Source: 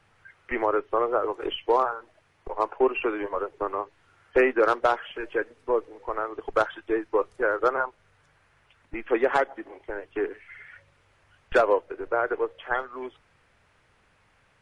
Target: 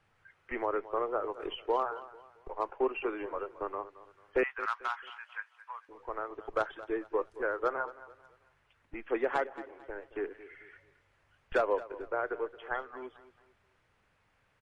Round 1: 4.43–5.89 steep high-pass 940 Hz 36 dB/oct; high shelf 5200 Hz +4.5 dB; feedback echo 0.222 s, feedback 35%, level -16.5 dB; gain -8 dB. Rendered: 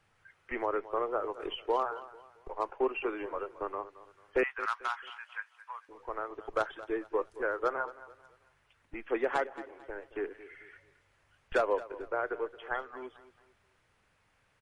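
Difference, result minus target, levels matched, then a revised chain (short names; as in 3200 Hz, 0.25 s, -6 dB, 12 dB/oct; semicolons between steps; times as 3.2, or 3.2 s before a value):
8000 Hz band +5.0 dB
4.43–5.89 steep high-pass 940 Hz 36 dB/oct; high shelf 5200 Hz -3.5 dB; feedback echo 0.222 s, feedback 35%, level -16.5 dB; gain -8 dB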